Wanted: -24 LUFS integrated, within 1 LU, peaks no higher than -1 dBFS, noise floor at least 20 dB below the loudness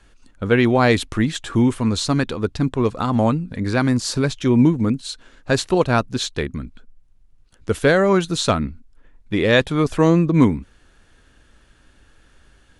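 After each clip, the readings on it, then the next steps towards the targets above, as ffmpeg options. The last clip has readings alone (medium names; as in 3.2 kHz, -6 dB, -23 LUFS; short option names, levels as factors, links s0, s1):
loudness -19.0 LUFS; peak level -1.5 dBFS; loudness target -24.0 LUFS
-> -af "volume=0.562"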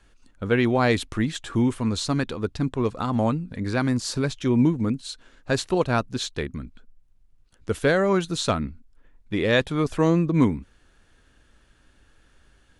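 loudness -24.0 LUFS; peak level -6.5 dBFS; noise floor -60 dBFS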